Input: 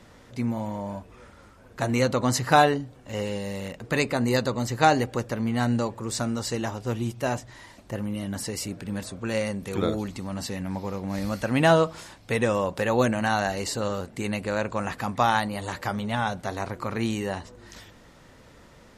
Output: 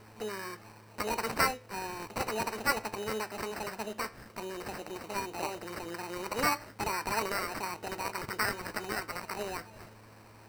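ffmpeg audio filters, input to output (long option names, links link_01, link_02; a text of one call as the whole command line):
ffmpeg -i in.wav -filter_complex "[0:a]highpass=frequency=270:poles=1,highshelf=frequency=6400:width_type=q:width=1.5:gain=-13,asplit=2[link_01][link_02];[link_02]acompressor=threshold=-37dB:ratio=6,volume=2.5dB[link_03];[link_01][link_03]amix=inputs=2:normalize=0,aeval=exprs='val(0)+0.00447*(sin(2*PI*60*n/s)+sin(2*PI*2*60*n/s)/2+sin(2*PI*3*60*n/s)/3+sin(2*PI*4*60*n/s)/4+sin(2*PI*5*60*n/s)/5)':channel_layout=same,asetrate=79821,aresample=44100,acrusher=samples=13:mix=1:aa=0.000001,flanger=delay=9.2:depth=4.8:regen=-82:speed=0.12:shape=sinusoidal,volume=-5dB" out.wav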